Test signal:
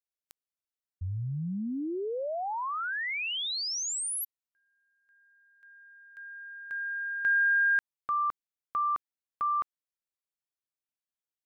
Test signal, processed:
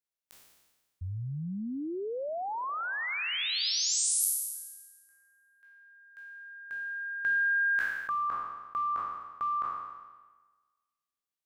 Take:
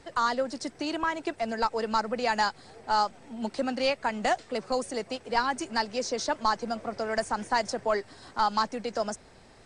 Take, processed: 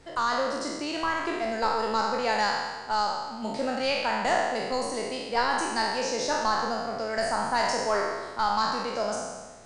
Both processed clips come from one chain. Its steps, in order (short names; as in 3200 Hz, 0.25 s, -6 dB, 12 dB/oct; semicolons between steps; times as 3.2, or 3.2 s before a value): spectral trails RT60 1.34 s; gain -2.5 dB